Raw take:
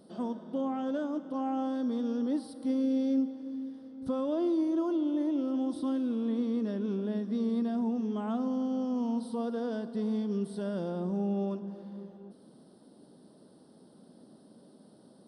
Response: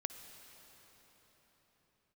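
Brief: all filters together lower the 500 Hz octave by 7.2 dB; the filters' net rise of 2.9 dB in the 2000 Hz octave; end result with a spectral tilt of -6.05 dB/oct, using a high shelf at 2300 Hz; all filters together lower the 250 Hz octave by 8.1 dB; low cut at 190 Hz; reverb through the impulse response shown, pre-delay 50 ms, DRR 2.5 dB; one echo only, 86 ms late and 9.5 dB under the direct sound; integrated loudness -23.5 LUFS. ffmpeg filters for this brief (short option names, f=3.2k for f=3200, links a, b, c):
-filter_complex "[0:a]highpass=190,equalizer=f=250:t=o:g=-6,equalizer=f=500:t=o:g=-7,equalizer=f=2k:t=o:g=9,highshelf=f=2.3k:g=-8,aecho=1:1:86:0.335,asplit=2[a][b];[1:a]atrim=start_sample=2205,adelay=50[c];[b][c]afir=irnorm=-1:irlink=0,volume=-1.5dB[d];[a][d]amix=inputs=2:normalize=0,volume=14dB"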